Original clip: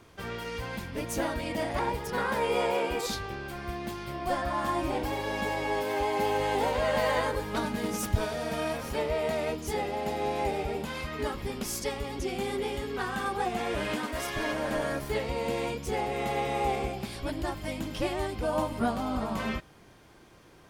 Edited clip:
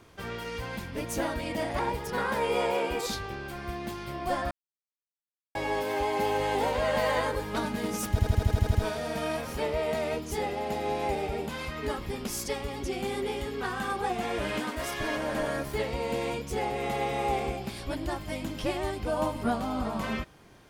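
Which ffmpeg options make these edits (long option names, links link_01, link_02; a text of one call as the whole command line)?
ffmpeg -i in.wav -filter_complex "[0:a]asplit=11[link_01][link_02][link_03][link_04][link_05][link_06][link_07][link_08][link_09][link_10][link_11];[link_01]atrim=end=4.51,asetpts=PTS-STARTPTS,afade=type=out:start_time=4.506:duration=0.004:curve=hsin[link_12];[link_02]atrim=start=4.51:end=5.55,asetpts=PTS-STARTPTS,volume=0[link_13];[link_03]atrim=start=5.55:end=8.192,asetpts=PTS-STARTPTS,afade=type=in:duration=0.004:curve=hsin[link_14];[link_04]atrim=start=8.108:end=8.192[link_15];[link_05]atrim=start=8.108:end=8.192[link_16];[link_06]atrim=start=8.108:end=8.192[link_17];[link_07]atrim=start=8.108:end=8.192[link_18];[link_08]atrim=start=8.108:end=8.192[link_19];[link_09]atrim=start=8.108:end=8.192[link_20];[link_10]atrim=start=8.108:end=8.192[link_21];[link_11]atrim=start=8.108[link_22];[link_12][link_13][link_14]concat=n=3:v=0:a=1[link_23];[link_23][link_15]acrossfade=duration=0.004:curve1=hsin:curve2=hsin[link_24];[link_24][link_16]acrossfade=duration=0.004:curve1=hsin:curve2=hsin[link_25];[link_25][link_17]acrossfade=duration=0.004:curve1=hsin:curve2=hsin[link_26];[link_26][link_18]acrossfade=duration=0.004:curve1=hsin:curve2=hsin[link_27];[link_27][link_19]acrossfade=duration=0.004:curve1=hsin:curve2=hsin[link_28];[link_28][link_20]acrossfade=duration=0.004:curve1=hsin:curve2=hsin[link_29];[link_29][link_21]acrossfade=duration=0.004:curve1=hsin:curve2=hsin[link_30];[link_30][link_22]acrossfade=duration=0.004:curve1=hsin:curve2=hsin" out.wav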